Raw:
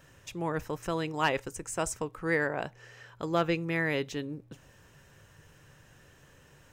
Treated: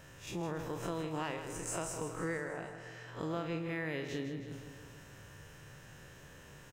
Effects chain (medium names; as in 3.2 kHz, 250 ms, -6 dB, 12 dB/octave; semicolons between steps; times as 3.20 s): spectral blur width 89 ms; compression 6:1, threshold -40 dBFS, peak gain reduction 15 dB; 2.37–3.08 s: feedback comb 55 Hz, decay 0.2 s, harmonics all, mix 60%; on a send: feedback delay 159 ms, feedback 59%, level -9.5 dB; on the sum: trim +4.5 dB